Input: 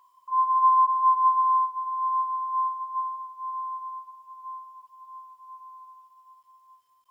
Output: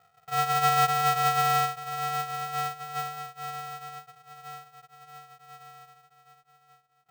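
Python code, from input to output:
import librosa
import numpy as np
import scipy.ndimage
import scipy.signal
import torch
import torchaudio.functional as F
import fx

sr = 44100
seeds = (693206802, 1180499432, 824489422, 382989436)

y = scipy.signal.sosfilt(scipy.signal.butter(4, 1000.0, 'lowpass', fs=sr, output='sos'), x)
y = fx.echo_feedback(y, sr, ms=181, feedback_pct=27, wet_db=-14)
y = y * np.sign(np.sin(2.0 * np.pi * 300.0 * np.arange(len(y)) / sr))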